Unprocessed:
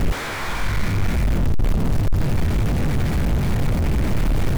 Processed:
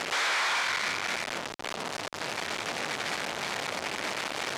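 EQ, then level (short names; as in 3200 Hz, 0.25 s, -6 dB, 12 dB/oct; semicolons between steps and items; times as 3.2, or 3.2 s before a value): BPF 700–5800 Hz; high shelf 3400 Hz +9 dB; 0.0 dB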